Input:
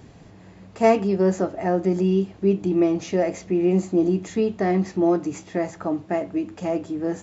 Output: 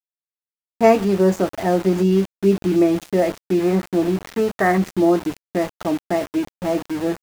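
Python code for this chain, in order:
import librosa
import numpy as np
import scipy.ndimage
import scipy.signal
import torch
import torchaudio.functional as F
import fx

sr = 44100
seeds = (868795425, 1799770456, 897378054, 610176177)

y = fx.env_lowpass(x, sr, base_hz=780.0, full_db=-16.5)
y = fx.curve_eq(y, sr, hz=(120.0, 280.0, 1700.0, 4400.0), db=(0, -5, 12, -23), at=(3.59, 4.78))
y = np.where(np.abs(y) >= 10.0 ** (-31.0 / 20.0), y, 0.0)
y = F.gain(torch.from_numpy(y), 3.5).numpy()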